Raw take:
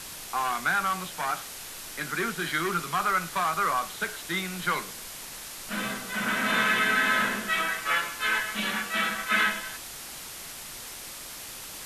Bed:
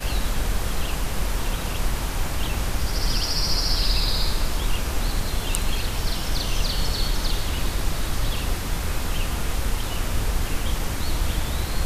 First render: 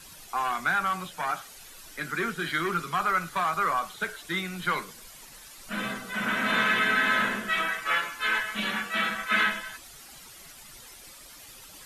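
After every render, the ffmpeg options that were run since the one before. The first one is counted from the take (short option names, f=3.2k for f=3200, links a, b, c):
-af "afftdn=nr=11:nf=-41"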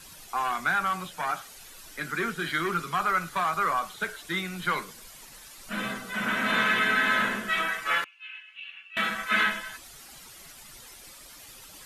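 -filter_complex "[0:a]asettb=1/sr,asplit=3[a][b][c];[a]atrim=end=8.044[d];[b]atrim=start=8.04:end=8.97,asetpts=PTS-STARTPTS,afade=t=in:d=0.004:c=qsin,afade=t=out:st=0.926:d=0.004:c=qsin,bandpass=f=2.7k:t=q:w=17[e];[c]atrim=start=8.966[f];[d][e]acrossfade=d=0.004:c1=hsin:c2=qsin[g];[g][f]acrossfade=d=0.004:c1=qsin:c2=hsin"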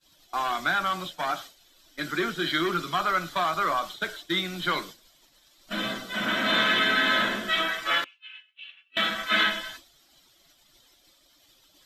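-af "agate=range=-33dB:threshold=-37dB:ratio=3:detection=peak,superequalizer=6b=2.24:8b=1.78:13b=2.51:14b=1.58:16b=0.447"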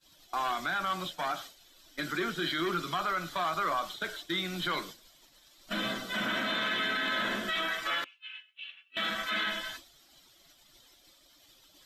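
-af "acompressor=threshold=-33dB:ratio=1.5,alimiter=limit=-23dB:level=0:latency=1:release=14"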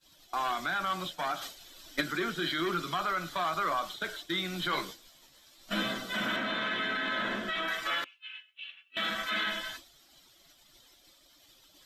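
-filter_complex "[0:a]asplit=3[a][b][c];[a]afade=t=out:st=1.41:d=0.02[d];[b]acontrast=84,afade=t=in:st=1.41:d=0.02,afade=t=out:st=2:d=0.02[e];[c]afade=t=in:st=2:d=0.02[f];[d][e][f]amix=inputs=3:normalize=0,asettb=1/sr,asplit=3[g][h][i];[g]atrim=end=4.714[j];[h]atrim=start=4.71:end=5.83,asetpts=PTS-STARTPTS,afade=t=in:d=0.004:c=qsin,afade=t=out:st=1.116:d=0.004:c=qsin,asplit=2[k][l];[l]adelay=15,volume=-3.5dB[m];[k][m]amix=inputs=2:normalize=0,atrim=end_sample=49392[n];[i]atrim=start=5.826[o];[j][n]acrossfade=d=0.004:c1=hsin:c2=qsin[p];[p][o]acrossfade=d=0.004:c1=qsin:c2=hsin,asettb=1/sr,asplit=3[q][r][s];[q]atrim=end=6.364[t];[r]atrim=start=6.36:end=7.68,asetpts=PTS-STARTPTS,afade=t=in:d=0.004:c=qsin,afade=t=out:st=1.316:d=0.004:c=qsin,lowpass=f=3.1k:p=1[u];[s]atrim=start=7.676[v];[t][u]acrossfade=d=0.004:c1=hsin:c2=qsin[w];[w][v]acrossfade=d=0.004:c1=qsin:c2=hsin"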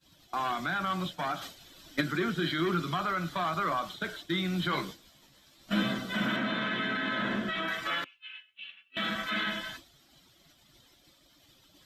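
-af "highpass=f=180:p=1,bass=f=250:g=15,treble=f=4k:g=-4"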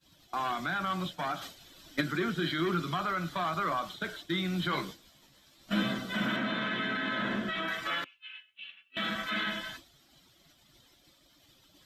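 -af "volume=-1dB"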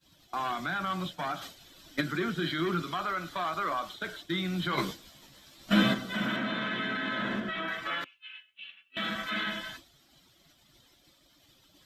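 -filter_complex "[0:a]asettb=1/sr,asplit=3[a][b][c];[a]atrim=end=2.824[d];[b]atrim=start=2.82:end=4.07,asetpts=PTS-STARTPTS,afade=t=in:d=0.004:c=qsin,afade=t=out:st=1.246:d=0.004:c=qsin,equalizer=f=150:t=o:w=0.89:g=-9.5[e];[c]atrim=start=4.066[f];[d][e]acrossfade=d=0.004:c1=hsin:c2=qsin[g];[g][f]acrossfade=d=0.004:c1=qsin:c2=hsin,asplit=3[h][i][j];[h]afade=t=out:st=4.77:d=0.02[k];[i]acontrast=59,afade=t=in:st=4.77:d=0.02,afade=t=out:st=5.93:d=0.02[l];[j]afade=t=in:st=5.93:d=0.02[m];[k][l][m]amix=inputs=3:normalize=0,asettb=1/sr,asplit=3[n][o][p];[n]atrim=end=7.404[q];[o]atrim=start=7.4:end=8.01,asetpts=PTS-STARTPTS,afade=t=in:d=0.004:c=qsin,afade=t=out:st=0.606:d=0.004:c=qsin,bass=f=250:g=-1,treble=f=4k:g=-7[r];[p]atrim=start=8.006[s];[q][r]acrossfade=d=0.004:c1=hsin:c2=qsin[t];[t][s]acrossfade=d=0.004:c1=qsin:c2=hsin"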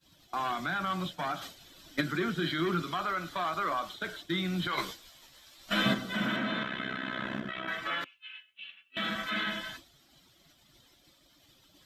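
-filter_complex "[0:a]asettb=1/sr,asplit=3[a][b][c];[a]atrim=end=4.674[d];[b]atrim=start=4.67:end=5.86,asetpts=PTS-STARTPTS,afade=t=in:d=0.004:c=qsin,afade=t=out:st=1.186:d=0.004:c=qsin,equalizer=f=180:w=0.52:g=-11.5[e];[c]atrim=start=5.856[f];[d][e]acrossfade=d=0.004:c1=hsin:c2=qsin[g];[g][f]acrossfade=d=0.004:c1=qsin:c2=hsin,asettb=1/sr,asplit=3[h][i][j];[h]atrim=end=6.634[k];[i]atrim=start=6.63:end=7.68,asetpts=PTS-STARTPTS,afade=t=in:d=0.004:c=qsin,afade=t=out:st=1.046:d=0.004:c=qsin,tremolo=f=64:d=0.857[l];[j]atrim=start=7.676[m];[k][l]acrossfade=d=0.004:c1=hsin:c2=qsin[n];[n][m]acrossfade=d=0.004:c1=qsin:c2=hsin"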